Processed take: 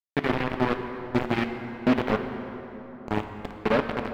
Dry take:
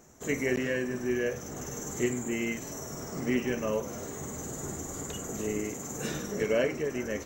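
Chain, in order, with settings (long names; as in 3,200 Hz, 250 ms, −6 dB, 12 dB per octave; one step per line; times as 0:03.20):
high-shelf EQ 10,000 Hz +5.5 dB
hollow resonant body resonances 210/1,000 Hz, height 7 dB, ringing for 30 ms
phase-vocoder stretch with locked phases 0.57×
bit reduction 4 bits
high-frequency loss of the air 410 metres
dense smooth reverb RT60 3.7 s, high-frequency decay 0.55×, DRR 6 dB
highs frequency-modulated by the lows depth 0.35 ms
level +4 dB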